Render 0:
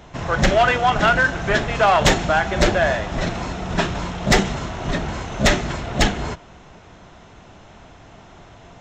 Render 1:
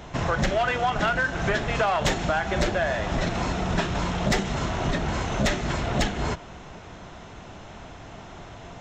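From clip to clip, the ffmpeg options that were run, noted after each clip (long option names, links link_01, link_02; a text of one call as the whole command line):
ffmpeg -i in.wav -af "acompressor=threshold=-24dB:ratio=6,volume=2.5dB" out.wav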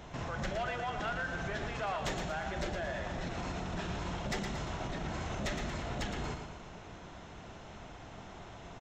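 ffmpeg -i in.wav -af "alimiter=limit=-23dB:level=0:latency=1:release=69,aecho=1:1:115|230|345|460|575:0.447|0.201|0.0905|0.0407|0.0183,volume=-7.5dB" out.wav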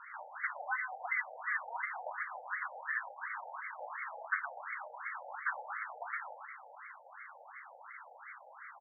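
ffmpeg -i in.wav -filter_complex "[0:a]lowpass=frequency=3000:width_type=q:width=0.5098,lowpass=frequency=3000:width_type=q:width=0.6013,lowpass=frequency=3000:width_type=q:width=0.9,lowpass=frequency=3000:width_type=q:width=2.563,afreqshift=-3500,asplit=2[link_01][link_02];[link_02]highpass=frequency=720:poles=1,volume=12dB,asoftclip=type=tanh:threshold=-22dB[link_03];[link_01][link_03]amix=inputs=2:normalize=0,lowpass=frequency=1100:poles=1,volume=-6dB,afftfilt=real='re*between(b*sr/1024,620*pow(1600/620,0.5+0.5*sin(2*PI*2.8*pts/sr))/1.41,620*pow(1600/620,0.5+0.5*sin(2*PI*2.8*pts/sr))*1.41)':imag='im*between(b*sr/1024,620*pow(1600/620,0.5+0.5*sin(2*PI*2.8*pts/sr))/1.41,620*pow(1600/620,0.5+0.5*sin(2*PI*2.8*pts/sr))*1.41)':win_size=1024:overlap=0.75,volume=9.5dB" out.wav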